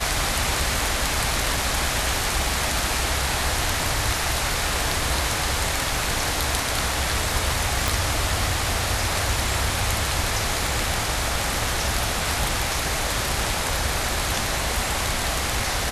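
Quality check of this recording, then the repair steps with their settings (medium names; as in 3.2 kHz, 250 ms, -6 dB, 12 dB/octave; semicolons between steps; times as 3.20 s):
7.88 s: pop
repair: de-click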